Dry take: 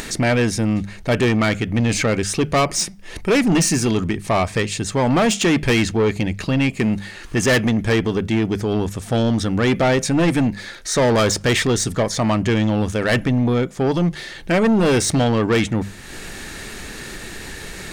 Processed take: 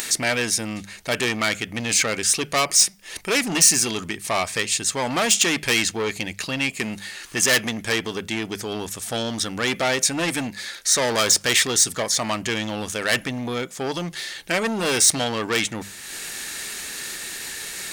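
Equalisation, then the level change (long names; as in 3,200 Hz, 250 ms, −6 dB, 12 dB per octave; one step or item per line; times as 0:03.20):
spectral tilt +3.5 dB per octave
−3.5 dB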